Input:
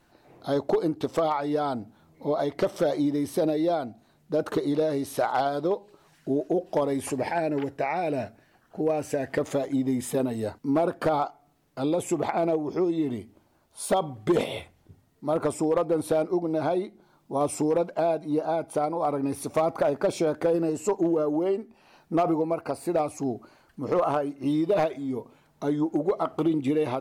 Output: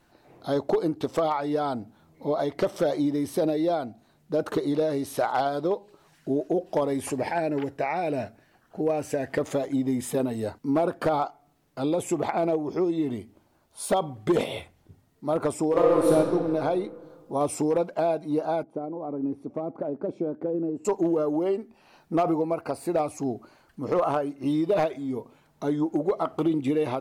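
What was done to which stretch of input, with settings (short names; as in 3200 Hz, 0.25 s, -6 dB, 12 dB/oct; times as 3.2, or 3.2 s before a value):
15.68–16.12 reverb throw, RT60 2.2 s, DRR -4 dB
18.63–20.85 band-pass 260 Hz, Q 1.3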